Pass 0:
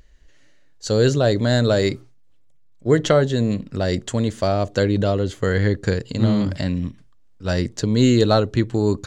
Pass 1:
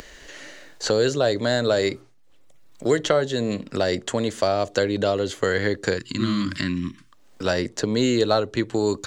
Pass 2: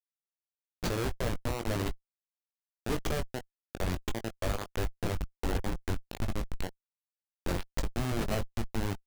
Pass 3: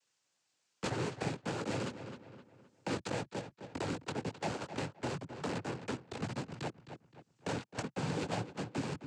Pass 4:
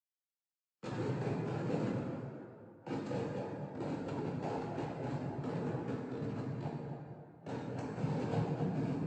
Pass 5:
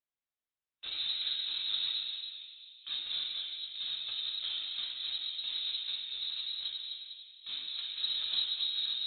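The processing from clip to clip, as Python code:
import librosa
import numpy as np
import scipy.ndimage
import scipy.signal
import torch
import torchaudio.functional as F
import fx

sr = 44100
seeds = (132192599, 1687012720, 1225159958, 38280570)

y1 = fx.spec_box(x, sr, start_s=5.97, length_s=1.15, low_hz=370.0, high_hz=980.0, gain_db=-20)
y1 = fx.bass_treble(y1, sr, bass_db=-12, treble_db=0)
y1 = fx.band_squash(y1, sr, depth_pct=70)
y2 = fx.high_shelf(y1, sr, hz=4100.0, db=10.5)
y2 = fx.schmitt(y2, sr, flips_db=-15.0)
y2 = fx.chorus_voices(y2, sr, voices=6, hz=1.5, base_ms=20, depth_ms=3.0, mix_pct=30)
y2 = y2 * librosa.db_to_amplitude(-4.0)
y3 = fx.noise_vocoder(y2, sr, seeds[0], bands=8)
y3 = fx.echo_filtered(y3, sr, ms=260, feedback_pct=21, hz=3800.0, wet_db=-13.5)
y3 = fx.band_squash(y3, sr, depth_pct=70)
y3 = y3 * librosa.db_to_amplitude(-2.5)
y4 = fx.rev_plate(y3, sr, seeds[1], rt60_s=3.7, hf_ratio=0.55, predelay_ms=0, drr_db=-5.0)
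y4 = fx.spectral_expand(y4, sr, expansion=1.5)
y4 = y4 * librosa.db_to_amplitude(-5.0)
y5 = fx.freq_invert(y4, sr, carrier_hz=4000)
y5 = y5 * librosa.db_to_amplitude(1.0)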